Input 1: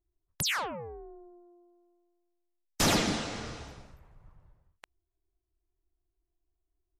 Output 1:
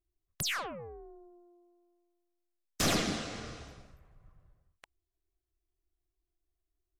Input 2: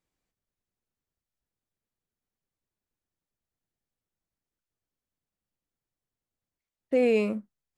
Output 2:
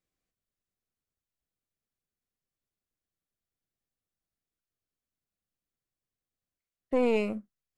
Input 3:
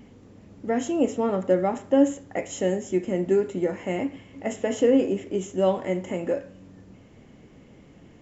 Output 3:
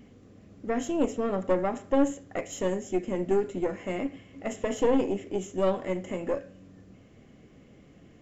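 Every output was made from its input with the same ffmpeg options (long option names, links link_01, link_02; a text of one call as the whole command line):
ffmpeg -i in.wav -af "asuperstop=centerf=900:order=4:qfactor=6.5,aeval=exprs='(tanh(6.31*val(0)+0.65)-tanh(0.65))/6.31':channel_layout=same" out.wav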